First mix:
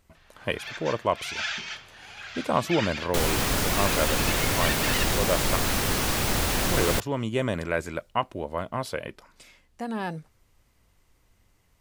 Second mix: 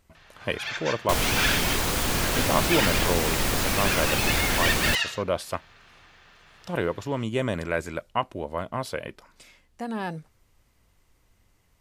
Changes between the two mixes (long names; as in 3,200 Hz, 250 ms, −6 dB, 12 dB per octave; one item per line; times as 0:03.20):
first sound +5.5 dB
second sound: entry −2.05 s